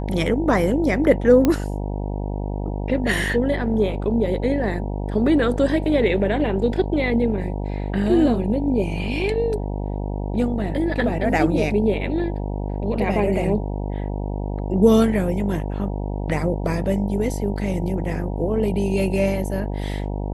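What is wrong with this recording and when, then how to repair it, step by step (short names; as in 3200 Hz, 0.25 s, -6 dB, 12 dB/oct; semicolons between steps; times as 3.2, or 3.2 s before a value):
buzz 50 Hz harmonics 19 -26 dBFS
1.45 pop -6 dBFS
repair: de-click; de-hum 50 Hz, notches 19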